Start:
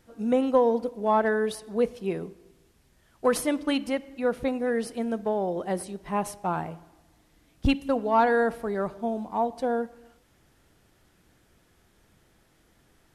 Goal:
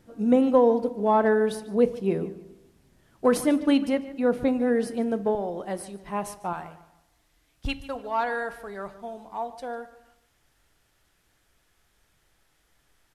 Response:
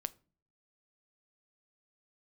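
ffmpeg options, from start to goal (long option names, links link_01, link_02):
-filter_complex "[0:a]asetnsamples=nb_out_samples=441:pad=0,asendcmd='5.35 equalizer g -2.5;6.53 equalizer g -11',equalizer=frequency=220:width_type=o:width=3:gain=6.5,asplit=2[link_01][link_02];[link_02]adelay=147,lowpass=frequency=4900:poles=1,volume=-16dB,asplit=2[link_03][link_04];[link_04]adelay=147,lowpass=frequency=4900:poles=1,volume=0.31,asplit=2[link_05][link_06];[link_06]adelay=147,lowpass=frequency=4900:poles=1,volume=0.31[link_07];[link_01][link_03][link_05][link_07]amix=inputs=4:normalize=0[link_08];[1:a]atrim=start_sample=2205[link_09];[link_08][link_09]afir=irnorm=-1:irlink=0"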